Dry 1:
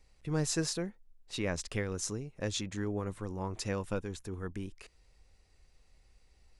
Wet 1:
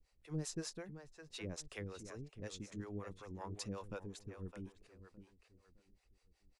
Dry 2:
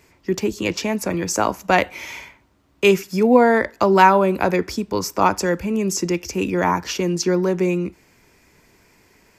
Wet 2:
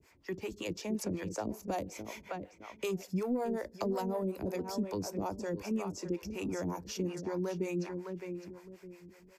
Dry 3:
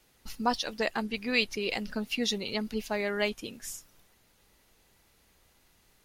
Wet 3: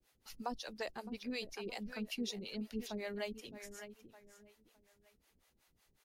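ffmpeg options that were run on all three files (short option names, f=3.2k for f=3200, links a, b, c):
-filter_complex "[0:a]asplit=2[a][b];[b]adelay=612,lowpass=f=3.5k:p=1,volume=-10.5dB,asplit=2[c][d];[d]adelay=612,lowpass=f=3.5k:p=1,volume=0.3,asplit=2[e][f];[f]adelay=612,lowpass=f=3.5k:p=1,volume=0.3[g];[a][c][e][g]amix=inputs=4:normalize=0,acrossover=split=830|4100[h][i][j];[i]acompressor=threshold=-37dB:ratio=6[k];[h][k][j]amix=inputs=3:normalize=0,asoftclip=type=tanh:threshold=-6.5dB,acrossover=split=650|7300[l][m][n];[l]acompressor=threshold=-22dB:ratio=4[o];[m]acompressor=threshold=-33dB:ratio=4[p];[n]acompressor=threshold=-45dB:ratio=4[q];[o][p][q]amix=inputs=3:normalize=0,acrossover=split=440[r][s];[r]aeval=exprs='val(0)*(1-1/2+1/2*cos(2*PI*5.4*n/s))':c=same[t];[s]aeval=exprs='val(0)*(1-1/2-1/2*cos(2*PI*5.4*n/s))':c=same[u];[t][u]amix=inputs=2:normalize=0,volume=-5.5dB"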